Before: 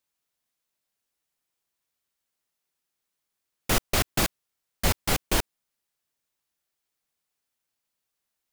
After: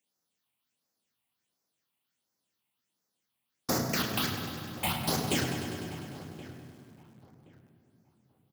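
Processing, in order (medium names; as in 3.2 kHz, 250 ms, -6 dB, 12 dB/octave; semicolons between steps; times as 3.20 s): high-pass 190 Hz 24 dB/octave; compression 8:1, threshold -26 dBFS, peak gain reduction 6.5 dB; harmony voices -12 st -4 dB; phase shifter stages 6, 1.4 Hz, lowest notch 390–3000 Hz; filtered feedback delay 1073 ms, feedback 26%, low-pass 1.9 kHz, level -16.5 dB; on a send at -2 dB: reverberation RT60 2.7 s, pre-delay 3 ms; on the sum: bit-crushed delay 100 ms, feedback 80%, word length 9-bit, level -10.5 dB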